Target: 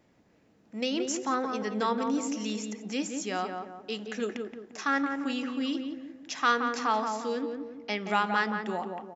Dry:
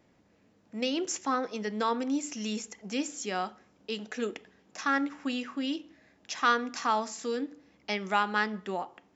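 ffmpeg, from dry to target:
-filter_complex "[0:a]asettb=1/sr,asplit=3[s0][s1][s2];[s0]atrim=end=6.794[s3];[s1]atrim=start=6.79:end=8.07,asetpts=PTS-STARTPTS,afade=t=in:d=0.004:c=qsin,afade=t=out:st=1.276:d=0.004:c=qsin,lowpass=5900[s4];[s2]atrim=start=8.066[s5];[s3][s4]acrossfade=d=0.004:c1=hsin:c2=qsin[s6];[s6][s5]acrossfade=d=0.004:c1=qsin:c2=hsin,asplit=2[s7][s8];[s8]adelay=174,lowpass=f=1300:p=1,volume=0.631,asplit=2[s9][s10];[s10]adelay=174,lowpass=f=1300:p=1,volume=0.46,asplit=2[s11][s12];[s12]adelay=174,lowpass=f=1300:p=1,volume=0.46,asplit=2[s13][s14];[s14]adelay=174,lowpass=f=1300:p=1,volume=0.46,asplit=2[s15][s16];[s16]adelay=174,lowpass=f=1300:p=1,volume=0.46,asplit=2[s17][s18];[s18]adelay=174,lowpass=f=1300:p=1,volume=0.46[s19];[s9][s11][s13][s15][s17][s19]amix=inputs=6:normalize=0[s20];[s7][s20]amix=inputs=2:normalize=0"

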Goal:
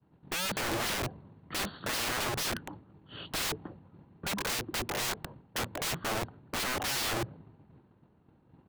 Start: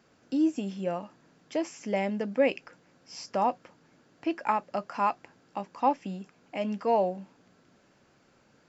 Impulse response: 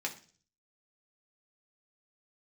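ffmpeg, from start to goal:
-filter_complex "[0:a]asplit=2[s0][s1];[s1]acrusher=bits=4:mix=0:aa=0.000001,volume=0.473[s2];[s0][s2]amix=inputs=2:normalize=0,asoftclip=type=hard:threshold=0.0422,acrossover=split=120|630[s3][s4][s5];[s4]acontrast=82[s6];[s3][s6][s5]amix=inputs=3:normalize=0,bass=f=250:g=0,treble=f=4000:g=-14,asetrate=26222,aresample=44100,atempo=1.68179,aeval=exprs='(mod(53.1*val(0)+1,2)-1)/53.1':c=same,agate=range=0.0224:threshold=0.00282:ratio=3:detection=peak,volume=2.24"

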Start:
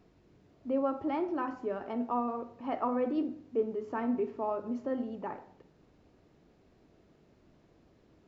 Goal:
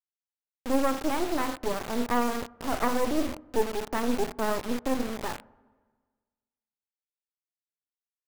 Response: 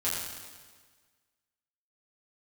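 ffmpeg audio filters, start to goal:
-filter_complex "[0:a]asplit=3[s0][s1][s2];[s0]afade=t=out:st=3.53:d=0.02[s3];[s1]equalizer=f=99:w=1.4:g=-10.5,afade=t=in:st=3.53:d=0.02,afade=t=out:st=4.48:d=0.02[s4];[s2]afade=t=in:st=4.48:d=0.02[s5];[s3][s4][s5]amix=inputs=3:normalize=0,acrusher=bits=4:dc=4:mix=0:aa=0.000001,asplit=2[s6][s7];[s7]lowpass=1300[s8];[1:a]atrim=start_sample=2205[s9];[s8][s9]afir=irnorm=-1:irlink=0,volume=0.0596[s10];[s6][s10]amix=inputs=2:normalize=0,volume=2.51"

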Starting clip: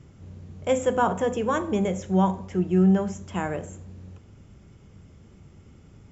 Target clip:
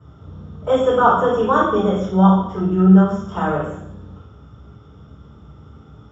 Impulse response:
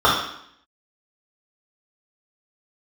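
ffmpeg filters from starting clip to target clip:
-filter_complex "[1:a]atrim=start_sample=2205[s0];[0:a][s0]afir=irnorm=-1:irlink=0,volume=0.168"

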